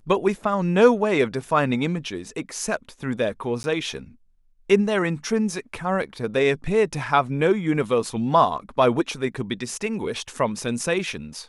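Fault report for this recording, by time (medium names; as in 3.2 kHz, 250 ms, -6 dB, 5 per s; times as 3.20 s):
3.63–3.64 s: dropout 10 ms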